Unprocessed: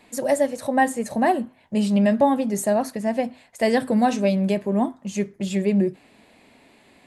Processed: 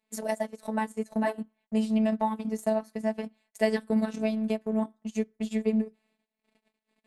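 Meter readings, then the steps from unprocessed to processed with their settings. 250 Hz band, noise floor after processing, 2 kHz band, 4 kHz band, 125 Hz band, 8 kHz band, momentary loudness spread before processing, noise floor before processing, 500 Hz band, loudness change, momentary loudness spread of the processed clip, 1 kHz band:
-6.5 dB, under -85 dBFS, -9.0 dB, -8.5 dB, under -10 dB, -12.0 dB, 7 LU, -56 dBFS, -8.0 dB, -7.5 dB, 7 LU, -11.0 dB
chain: gate -51 dBFS, range -20 dB; robotiser 218 Hz; transient shaper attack +4 dB, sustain -12 dB; gain -6.5 dB

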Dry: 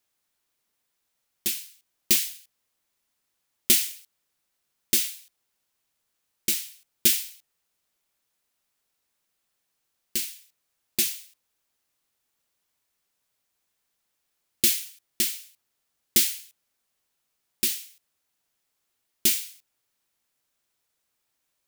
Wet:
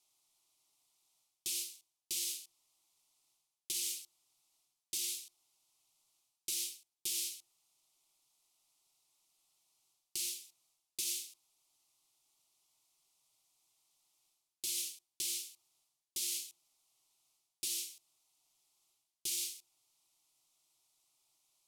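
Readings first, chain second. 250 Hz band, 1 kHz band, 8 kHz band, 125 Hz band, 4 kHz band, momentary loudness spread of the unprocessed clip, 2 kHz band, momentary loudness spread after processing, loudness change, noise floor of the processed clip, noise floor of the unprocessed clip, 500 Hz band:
-23.0 dB, n/a, -10.0 dB, under -20 dB, -11.0 dB, 17 LU, -16.0 dB, 13 LU, -14.0 dB, under -85 dBFS, -78 dBFS, -19.5 dB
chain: notches 50/100/150/200/250/300/350 Hz; reverse; compressor 6:1, threshold -36 dBFS, peak gain reduction 21 dB; reverse; limiter -27.5 dBFS, peak gain reduction 5 dB; LPF 11000 Hz 12 dB/oct; tilt shelf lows -3.5 dB, about 1100 Hz; fixed phaser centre 330 Hz, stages 8; gain +2.5 dB

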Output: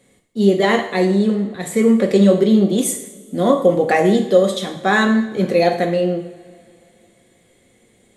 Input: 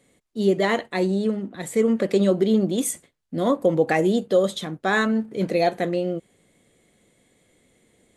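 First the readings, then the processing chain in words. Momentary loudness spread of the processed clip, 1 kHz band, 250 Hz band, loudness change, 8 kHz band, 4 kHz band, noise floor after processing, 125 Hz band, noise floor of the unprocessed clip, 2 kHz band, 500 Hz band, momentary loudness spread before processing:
8 LU, +6.5 dB, +7.0 dB, +6.0 dB, +5.5 dB, +6.0 dB, -56 dBFS, +6.5 dB, -65 dBFS, +5.5 dB, +6.0 dB, 8 LU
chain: two-slope reverb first 0.67 s, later 3 s, from -21 dB, DRR 3.5 dB; gain +4 dB

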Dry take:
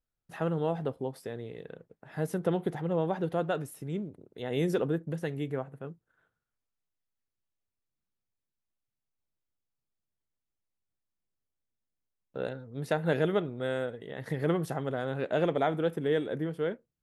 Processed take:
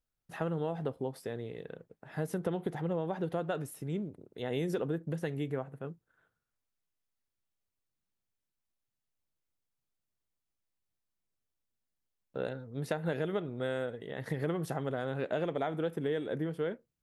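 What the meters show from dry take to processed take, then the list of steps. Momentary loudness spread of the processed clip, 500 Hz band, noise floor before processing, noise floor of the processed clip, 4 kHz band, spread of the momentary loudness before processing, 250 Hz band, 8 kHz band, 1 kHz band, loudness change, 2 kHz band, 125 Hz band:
10 LU, -4.0 dB, under -85 dBFS, under -85 dBFS, -3.5 dB, 13 LU, -3.5 dB, -1.0 dB, -4.5 dB, -4.0 dB, -3.5 dB, -3.0 dB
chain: compressor, threshold -29 dBFS, peak gain reduction 8 dB

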